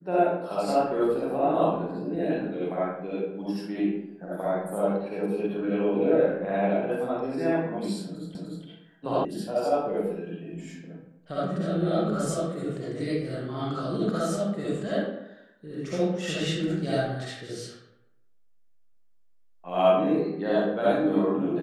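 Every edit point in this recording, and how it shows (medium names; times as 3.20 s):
8.35 s: repeat of the last 0.3 s
9.25 s: sound stops dead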